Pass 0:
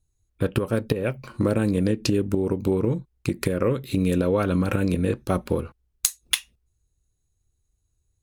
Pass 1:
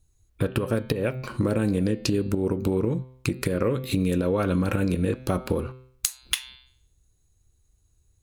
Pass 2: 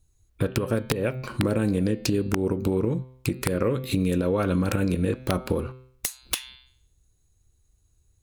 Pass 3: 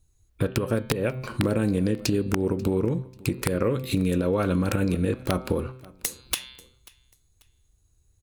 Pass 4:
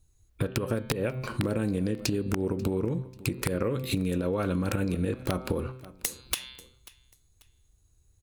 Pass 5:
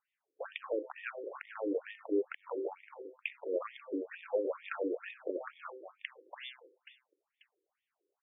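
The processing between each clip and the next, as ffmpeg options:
ffmpeg -i in.wav -filter_complex "[0:a]bandreject=frequency=128.5:width_type=h:width=4,bandreject=frequency=257:width_type=h:width=4,bandreject=frequency=385.5:width_type=h:width=4,bandreject=frequency=514:width_type=h:width=4,bandreject=frequency=642.5:width_type=h:width=4,bandreject=frequency=771:width_type=h:width=4,bandreject=frequency=899.5:width_type=h:width=4,bandreject=frequency=1028:width_type=h:width=4,bandreject=frequency=1156.5:width_type=h:width=4,bandreject=frequency=1285:width_type=h:width=4,bandreject=frequency=1413.5:width_type=h:width=4,bandreject=frequency=1542:width_type=h:width=4,bandreject=frequency=1670.5:width_type=h:width=4,bandreject=frequency=1799:width_type=h:width=4,bandreject=frequency=1927.5:width_type=h:width=4,bandreject=frequency=2056:width_type=h:width=4,bandreject=frequency=2184.5:width_type=h:width=4,bandreject=frequency=2313:width_type=h:width=4,bandreject=frequency=2441.5:width_type=h:width=4,bandreject=frequency=2570:width_type=h:width=4,bandreject=frequency=2698.5:width_type=h:width=4,bandreject=frequency=2827:width_type=h:width=4,bandreject=frequency=2955.5:width_type=h:width=4,bandreject=frequency=3084:width_type=h:width=4,bandreject=frequency=3212.5:width_type=h:width=4,bandreject=frequency=3341:width_type=h:width=4,bandreject=frequency=3469.5:width_type=h:width=4,bandreject=frequency=3598:width_type=h:width=4,bandreject=frequency=3726.5:width_type=h:width=4,bandreject=frequency=3855:width_type=h:width=4,bandreject=frequency=3983.5:width_type=h:width=4,bandreject=frequency=4112:width_type=h:width=4,bandreject=frequency=4240.5:width_type=h:width=4,bandreject=frequency=4369:width_type=h:width=4,bandreject=frequency=4497.5:width_type=h:width=4,bandreject=frequency=4626:width_type=h:width=4,bandreject=frequency=4754.5:width_type=h:width=4,asplit=2[link_01][link_02];[link_02]alimiter=limit=-15dB:level=0:latency=1:release=142,volume=2.5dB[link_03];[link_01][link_03]amix=inputs=2:normalize=0,acompressor=threshold=-26dB:ratio=2" out.wav
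ffmpeg -i in.wav -af "aeval=exprs='(mod(3.98*val(0)+1,2)-1)/3.98':channel_layout=same" out.wav
ffmpeg -i in.wav -af "aecho=1:1:539|1078:0.0708|0.0219" out.wav
ffmpeg -i in.wav -af "acompressor=threshold=-24dB:ratio=6" out.wav
ffmpeg -i in.wav -af "highpass=300,lowpass=3500,alimiter=limit=-23dB:level=0:latency=1:release=108,afftfilt=real='re*between(b*sr/1024,380*pow(2600/380,0.5+0.5*sin(2*PI*2.2*pts/sr))/1.41,380*pow(2600/380,0.5+0.5*sin(2*PI*2.2*pts/sr))*1.41)':imag='im*between(b*sr/1024,380*pow(2600/380,0.5+0.5*sin(2*PI*2.2*pts/sr))/1.41,380*pow(2600/380,0.5+0.5*sin(2*PI*2.2*pts/sr))*1.41)':win_size=1024:overlap=0.75,volume=4dB" out.wav

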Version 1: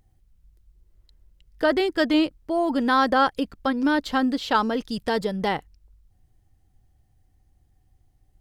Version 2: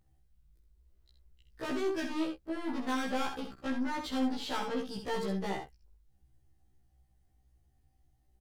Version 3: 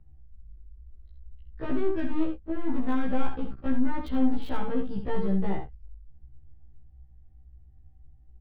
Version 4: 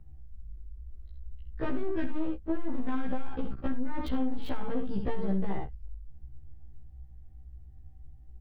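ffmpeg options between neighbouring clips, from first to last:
ffmpeg -i in.wav -af "aeval=exprs='(tanh(20*val(0)+0.3)-tanh(0.3))/20':channel_layout=same,aecho=1:1:65|78:0.447|0.188,afftfilt=real='re*1.73*eq(mod(b,3),0)':imag='im*1.73*eq(mod(b,3),0)':win_size=2048:overlap=0.75,volume=-3.5dB" out.wav
ffmpeg -i in.wav -filter_complex "[0:a]aemphasis=mode=reproduction:type=riaa,acrossover=split=160|960|4100[link_01][link_02][link_03][link_04];[link_04]acrusher=bits=7:mix=0:aa=0.000001[link_05];[link_01][link_02][link_03][link_05]amix=inputs=4:normalize=0" out.wav
ffmpeg -i in.wav -af "acompressor=threshold=-23dB:ratio=6,asoftclip=type=tanh:threshold=-23.5dB,volume=4dB" out.wav

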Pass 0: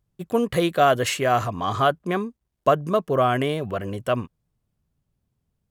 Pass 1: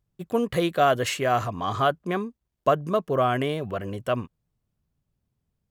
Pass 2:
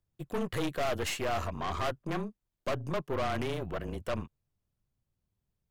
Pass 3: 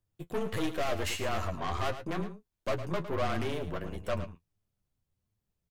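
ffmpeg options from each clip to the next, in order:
ffmpeg -i in.wav -af "equalizer=frequency=10000:width_type=o:width=0.77:gain=-2.5,volume=-2.5dB" out.wav
ffmpeg -i in.wav -af "afreqshift=-27,aeval=exprs='(tanh(22.4*val(0)+0.65)-tanh(0.65))/22.4':channel_layout=same,volume=-1.5dB" out.wav
ffmpeg -i in.wav -af "flanger=delay=9.1:depth=2.8:regen=38:speed=1.5:shape=sinusoidal,aecho=1:1:108:0.266,volume=3.5dB" out.wav

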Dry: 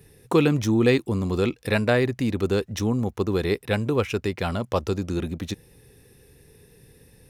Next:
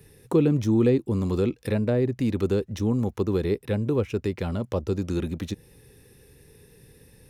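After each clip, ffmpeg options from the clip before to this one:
ffmpeg -i in.wav -filter_complex "[0:a]bandreject=frequency=700:width=12,acrossover=split=610[link_01][link_02];[link_02]acompressor=threshold=-38dB:ratio=10[link_03];[link_01][link_03]amix=inputs=2:normalize=0" out.wav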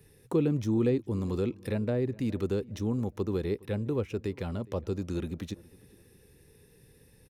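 ffmpeg -i in.wav -filter_complex "[0:a]asplit=2[link_01][link_02];[link_02]adelay=413,lowpass=frequency=1700:poles=1,volume=-22dB,asplit=2[link_03][link_04];[link_04]adelay=413,lowpass=frequency=1700:poles=1,volume=0.37,asplit=2[link_05][link_06];[link_06]adelay=413,lowpass=frequency=1700:poles=1,volume=0.37[link_07];[link_01][link_03][link_05][link_07]amix=inputs=4:normalize=0,volume=-6dB" out.wav

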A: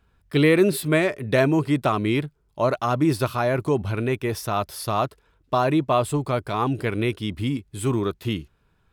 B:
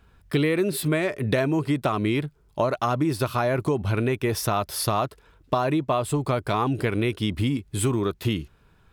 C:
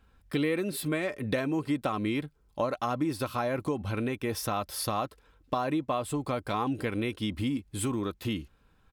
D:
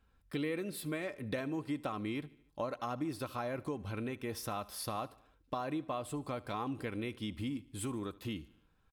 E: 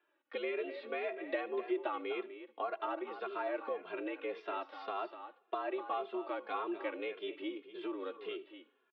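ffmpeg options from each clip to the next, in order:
ffmpeg -i in.wav -af "acompressor=threshold=-27dB:ratio=6,volume=6.5dB" out.wav
ffmpeg -i in.wav -af "aecho=1:1:3.8:0.38,volume=-6.5dB" out.wav
ffmpeg -i in.wav -af "aecho=1:1:74|148|222|296:0.0891|0.0499|0.0279|0.0157,volume=-8dB" out.wav
ffmpeg -i in.wav -filter_complex "[0:a]highpass=frequency=260:width_type=q:width=0.5412,highpass=frequency=260:width_type=q:width=1.307,lowpass=frequency=3300:width_type=q:width=0.5176,lowpass=frequency=3300:width_type=q:width=0.7071,lowpass=frequency=3300:width_type=q:width=1.932,afreqshift=74,aecho=1:1:249:0.266,asplit=2[link_01][link_02];[link_02]adelay=2.5,afreqshift=-1.8[link_03];[link_01][link_03]amix=inputs=2:normalize=1,volume=4dB" out.wav

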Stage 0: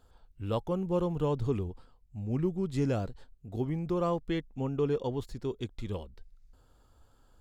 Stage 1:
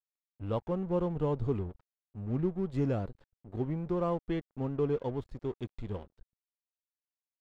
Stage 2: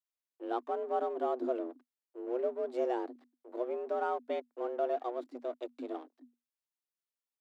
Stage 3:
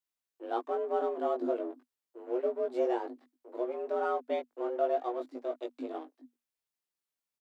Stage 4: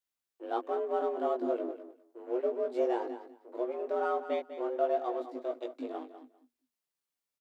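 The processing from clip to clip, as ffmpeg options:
ffmpeg -i in.wav -af "aeval=exprs='sgn(val(0))*max(abs(val(0))-0.00447,0)':channel_layout=same,lowpass=frequency=1500:poles=1" out.wav
ffmpeg -i in.wav -af "afreqshift=240,volume=-2.5dB" out.wav
ffmpeg -i in.wav -filter_complex "[0:a]asplit=2[link_01][link_02];[link_02]adelay=19,volume=-2.5dB[link_03];[link_01][link_03]amix=inputs=2:normalize=0" out.wav
ffmpeg -i in.wav -af "aecho=1:1:199|398:0.251|0.0402" out.wav

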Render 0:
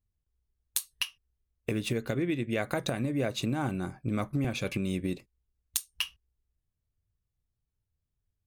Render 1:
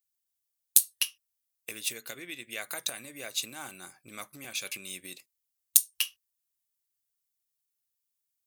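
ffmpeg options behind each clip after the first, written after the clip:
ffmpeg -i in.wav -af "aderivative,volume=9dB" out.wav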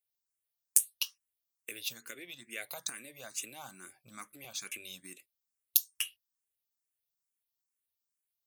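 ffmpeg -i in.wav -filter_complex "[0:a]asplit=2[link_01][link_02];[link_02]afreqshift=2.3[link_03];[link_01][link_03]amix=inputs=2:normalize=1,volume=-2dB" out.wav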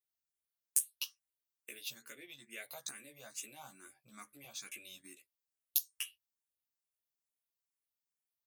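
ffmpeg -i in.wav -filter_complex "[0:a]asplit=2[link_01][link_02];[link_02]adelay=14,volume=-3dB[link_03];[link_01][link_03]amix=inputs=2:normalize=0,volume=-7.5dB" out.wav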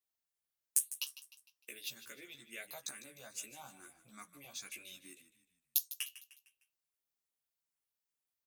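ffmpeg -i in.wav -filter_complex "[0:a]asplit=5[link_01][link_02][link_03][link_04][link_05];[link_02]adelay=152,afreqshift=-35,volume=-14.5dB[link_06];[link_03]adelay=304,afreqshift=-70,volume=-21.6dB[link_07];[link_04]adelay=456,afreqshift=-105,volume=-28.8dB[link_08];[link_05]adelay=608,afreqshift=-140,volume=-35.9dB[link_09];[link_01][link_06][link_07][link_08][link_09]amix=inputs=5:normalize=0" out.wav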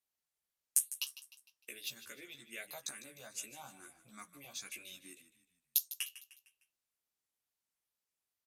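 ffmpeg -i in.wav -af "aresample=32000,aresample=44100,volume=1dB" out.wav

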